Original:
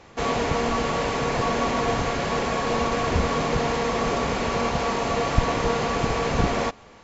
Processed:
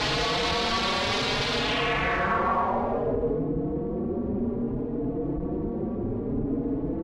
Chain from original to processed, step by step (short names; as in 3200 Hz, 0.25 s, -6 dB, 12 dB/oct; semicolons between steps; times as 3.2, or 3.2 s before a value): infinite clipping; low-pass sweep 4100 Hz -> 320 Hz, 1.55–3.5; endless flanger 4.3 ms +0.6 Hz